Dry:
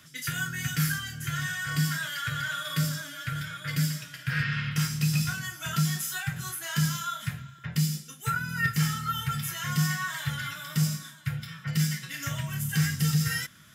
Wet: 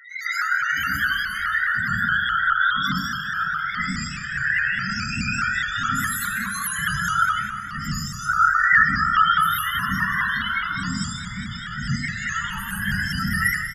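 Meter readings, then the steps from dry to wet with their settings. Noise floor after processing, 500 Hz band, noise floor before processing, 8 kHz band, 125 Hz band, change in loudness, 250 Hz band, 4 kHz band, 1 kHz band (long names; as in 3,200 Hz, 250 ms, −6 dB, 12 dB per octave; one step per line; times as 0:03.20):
−32 dBFS, below −15 dB, −50 dBFS, 0.0 dB, −4.5 dB, +7.5 dB, +0.5 dB, +4.5 dB, +14.5 dB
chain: peak hold with a rise ahead of every peak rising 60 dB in 0.39 s
high-pass filter 820 Hz 6 dB per octave
notch filter 5,800 Hz, Q 20
in parallel at −0.5 dB: brickwall limiter −29 dBFS, peak gain reduction 10.5 dB
on the sum: upward compression, threshold −39 dBFS
random phases in short frames
noise that follows the level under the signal 31 dB
spectral peaks only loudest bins 8
on a send: echo with shifted repeats 186 ms, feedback 58%, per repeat −32 Hz, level −10.5 dB
on the sum: dense smooth reverb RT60 0.85 s, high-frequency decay 0.65×, pre-delay 90 ms, DRR −9 dB
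pitch modulation by a square or saw wave saw up 4.8 Hz, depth 100 cents
level +1.5 dB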